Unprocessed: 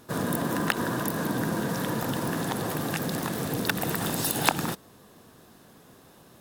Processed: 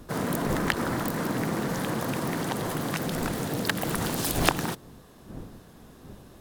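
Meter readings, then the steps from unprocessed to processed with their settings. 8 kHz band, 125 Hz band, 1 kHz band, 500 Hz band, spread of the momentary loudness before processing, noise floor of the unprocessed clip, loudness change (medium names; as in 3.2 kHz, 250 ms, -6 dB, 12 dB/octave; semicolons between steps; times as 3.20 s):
-1.0 dB, +0.5 dB, -0.5 dB, +0.5 dB, 4 LU, -54 dBFS, 0.0 dB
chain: wind noise 250 Hz -39 dBFS; loudspeaker Doppler distortion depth 0.71 ms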